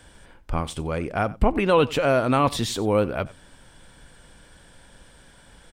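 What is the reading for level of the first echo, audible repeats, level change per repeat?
-20.5 dB, 1, no steady repeat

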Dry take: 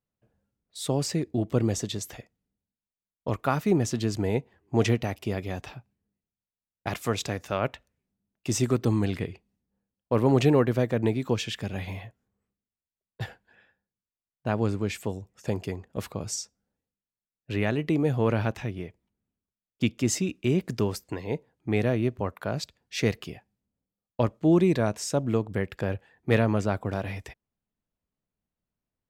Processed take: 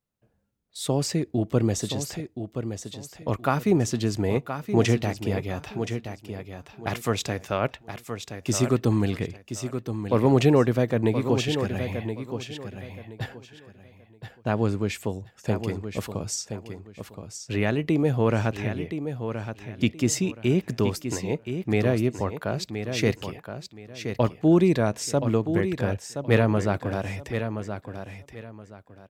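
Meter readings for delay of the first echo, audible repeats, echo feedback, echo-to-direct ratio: 1.023 s, 3, 24%, -8.0 dB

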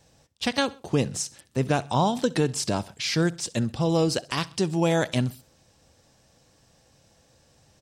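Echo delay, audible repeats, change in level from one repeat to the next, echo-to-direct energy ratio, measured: 65 ms, 2, -6.0 dB, -21.0 dB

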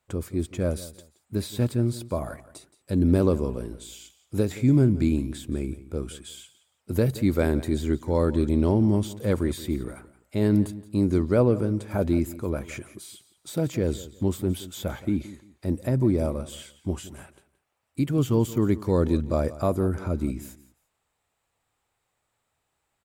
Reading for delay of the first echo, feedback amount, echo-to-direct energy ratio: 0.173 s, 25%, -17.0 dB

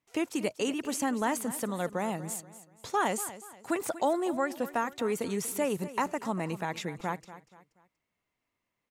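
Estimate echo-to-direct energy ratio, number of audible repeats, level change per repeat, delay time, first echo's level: -14.5 dB, 3, -9.0 dB, 0.239 s, -15.0 dB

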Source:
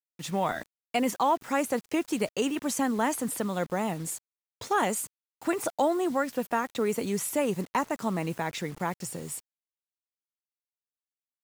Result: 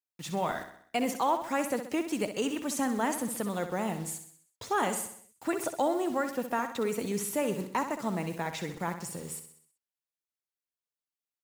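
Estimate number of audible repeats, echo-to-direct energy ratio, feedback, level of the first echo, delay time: 5, -8.0 dB, 51%, -9.5 dB, 64 ms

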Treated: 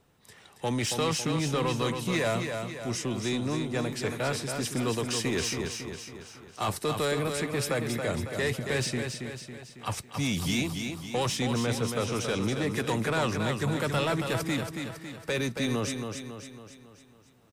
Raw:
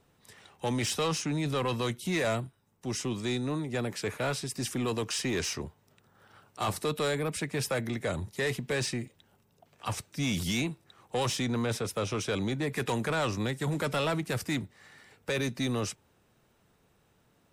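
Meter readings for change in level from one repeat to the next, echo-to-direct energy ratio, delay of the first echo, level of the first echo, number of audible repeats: -6.0 dB, -4.5 dB, 0.276 s, -6.0 dB, 5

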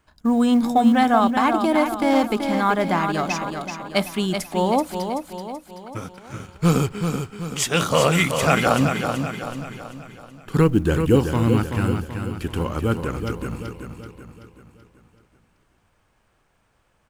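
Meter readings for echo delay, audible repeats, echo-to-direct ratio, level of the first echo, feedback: 0.381 s, 5, -5.5 dB, -6.5 dB, 48%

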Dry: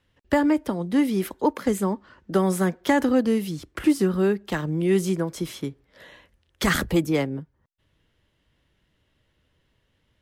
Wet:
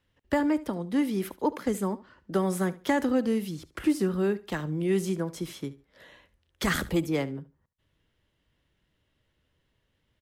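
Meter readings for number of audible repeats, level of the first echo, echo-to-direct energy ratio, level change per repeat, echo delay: 2, -18.0 dB, -18.0 dB, -14.0 dB, 72 ms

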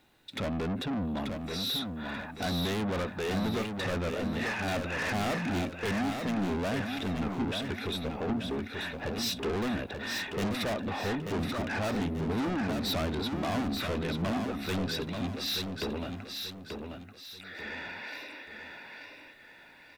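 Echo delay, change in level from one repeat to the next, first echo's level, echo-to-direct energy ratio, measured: 0.885 s, -8.5 dB, -5.5 dB, -5.0 dB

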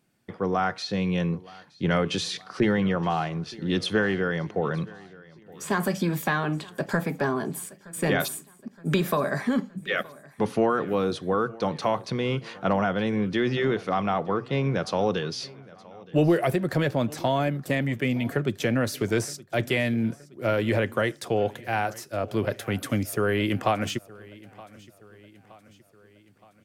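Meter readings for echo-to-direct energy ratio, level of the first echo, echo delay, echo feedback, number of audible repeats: -20.5 dB, -22.0 dB, 0.92 s, 54%, 3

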